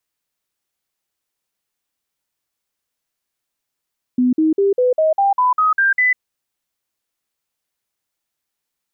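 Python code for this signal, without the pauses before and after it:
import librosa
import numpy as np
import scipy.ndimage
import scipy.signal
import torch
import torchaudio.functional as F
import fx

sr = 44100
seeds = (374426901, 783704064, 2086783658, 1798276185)

y = fx.stepped_sweep(sr, from_hz=250.0, direction='up', per_octave=3, tones=10, dwell_s=0.15, gap_s=0.05, level_db=-11.5)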